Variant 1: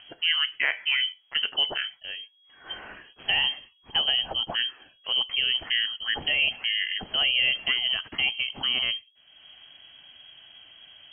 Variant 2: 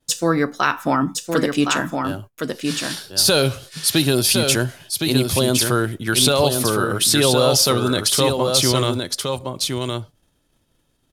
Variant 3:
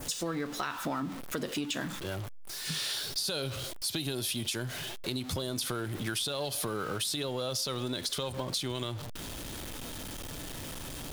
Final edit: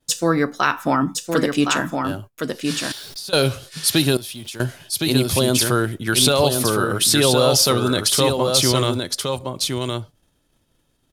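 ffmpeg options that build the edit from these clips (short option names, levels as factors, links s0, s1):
-filter_complex "[2:a]asplit=2[s0][s1];[1:a]asplit=3[s2][s3][s4];[s2]atrim=end=2.922[s5];[s0]atrim=start=2.918:end=3.332[s6];[s3]atrim=start=3.328:end=4.172[s7];[s1]atrim=start=4.168:end=4.602[s8];[s4]atrim=start=4.598[s9];[s5][s6]acrossfade=d=0.004:c1=hsin:c2=hsin[s10];[s10][s7]acrossfade=d=0.004:c1=hsin:c2=hsin[s11];[s11][s8]acrossfade=d=0.004:c1=hsin:c2=hsin[s12];[s12][s9]acrossfade=d=0.004:c1=hsin:c2=hsin"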